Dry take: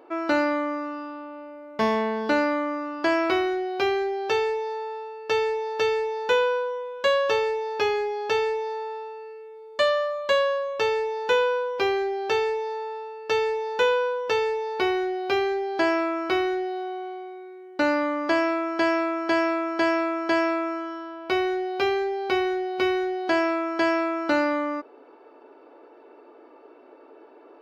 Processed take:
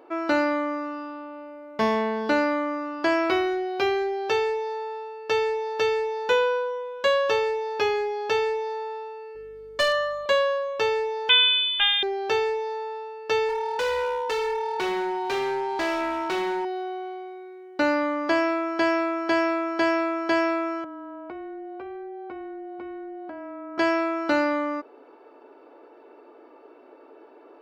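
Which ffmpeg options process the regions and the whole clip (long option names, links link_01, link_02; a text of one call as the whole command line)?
ffmpeg -i in.wav -filter_complex "[0:a]asettb=1/sr,asplit=3[link_01][link_02][link_03];[link_01]atrim=end=9.354[link_04];[link_02]atrim=start=9.35:end=10.26,asetpts=PTS-STARTPTS,afade=type=in:duration=0.004:curve=qsin,afade=type=out:start_time=0.906:duration=0.004:curve=qsin,aecho=1:1:7.4:0.82,atrim=end_sample=40131,asoftclip=type=hard:threshold=-16.5dB,aeval=exprs='val(0)+0.00158*(sin(2*PI*50*n/s)+sin(2*PI*2*50*n/s)/2+sin(2*PI*3*50*n/s)/3+sin(2*PI*4*50*n/s)/4+sin(2*PI*5*50*n/s)/5)':channel_layout=same[link_05];[link_03]atrim=start=10.256[link_06];[link_04][link_05]acrossfade=duration=0.004:curve1=hsin:curve2=qsin[link_07];[link_07][link_06]acrossfade=duration=0.004:curve1=qsin:curve2=hsin,asettb=1/sr,asplit=3[link_08][link_09][link_10];[link_08]atrim=end=11.294[link_11];[link_09]atrim=start=11.29:end=12.03,asetpts=PTS-STARTPTS,afade=type=in:duration=0.004:curve=qsin,afade=type=out:start_time=0.736:duration=0.004:curve=qsin,highpass=510,acontrast=36,lowpass=frequency=3400:width_type=q:width=0.5098,lowpass=frequency=3400:width_type=q:width=0.6013,lowpass=frequency=3400:width_type=q:width=0.9,lowpass=frequency=3400:width_type=q:width=2.563,afreqshift=-4000[link_12];[link_10]atrim=start=12.026[link_13];[link_11][link_12]acrossfade=duration=0.004:curve1=hsin:curve2=qsin[link_14];[link_14][link_13]acrossfade=duration=0.004:curve1=qsin:curve2=hsin,asettb=1/sr,asplit=3[link_15][link_16][link_17];[link_15]atrim=end=13.494[link_18];[link_16]atrim=start=13.49:end=16.65,asetpts=PTS-STARTPTS,afade=type=in:duration=0.004:curve=qsin,afade=type=out:start_time=3.156:duration=0.004:curve=qsin,aeval=exprs='val(0)+0.0355*sin(2*PI*920*n/s)':channel_layout=same,volume=22.5dB,asoftclip=hard,volume=-22.5dB,lowshelf=frequency=140:gain=-7.5[link_19];[link_17]atrim=start=16.646[link_20];[link_18][link_19]acrossfade=duration=0.004:curve1=hsin:curve2=qsin[link_21];[link_21][link_20]acrossfade=duration=0.004:curve1=qsin:curve2=hsin,asettb=1/sr,asplit=3[link_22][link_23][link_24];[link_22]atrim=end=20.844[link_25];[link_23]atrim=start=20.84:end=23.78,asetpts=PTS-STARTPTS,afade=type=in:duration=0.004:curve=qsin,afade=type=out:start_time=2.936:duration=0.004:curve=qsin,lowpass=1300,afreqshift=-20,acompressor=threshold=-35dB:ratio=6:attack=3.2:release=140:knee=1:detection=peak[link_26];[link_24]atrim=start=23.776[link_27];[link_25][link_26]acrossfade=duration=0.004:curve1=hsin:curve2=qsin[link_28];[link_28][link_27]acrossfade=duration=0.004:curve1=qsin:curve2=hsin" out.wav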